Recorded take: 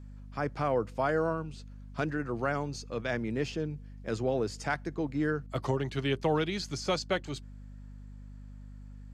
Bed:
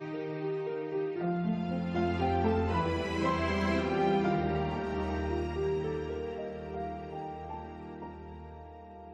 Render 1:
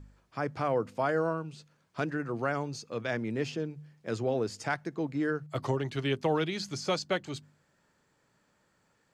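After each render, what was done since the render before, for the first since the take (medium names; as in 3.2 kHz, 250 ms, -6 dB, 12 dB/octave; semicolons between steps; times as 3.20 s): de-hum 50 Hz, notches 5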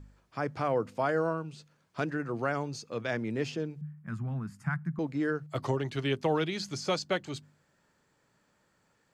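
3.81–4.99 s: FFT filter 110 Hz 0 dB, 160 Hz +14 dB, 270 Hz -7 dB, 460 Hz -27 dB, 750 Hz -13 dB, 1.1 kHz -2 dB, 1.6 kHz -2 dB, 3.9 kHz -21 dB, 6 kHz -19 dB, 11 kHz -4 dB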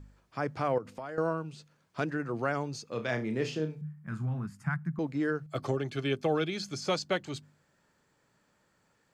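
0.78–1.18 s: compression, threshold -36 dBFS; 2.88–4.46 s: flutter echo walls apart 5.5 m, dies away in 0.24 s; 5.46–6.82 s: comb of notches 960 Hz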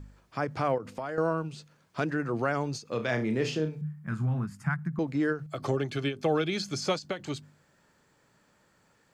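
in parallel at -2.5 dB: peak limiter -27.5 dBFS, peak gain reduction 10.5 dB; on the sum: endings held to a fixed fall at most 210 dB/s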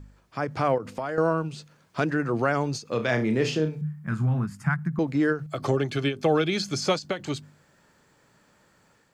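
level rider gain up to 4.5 dB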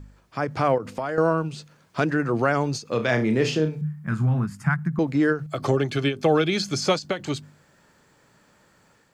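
trim +2.5 dB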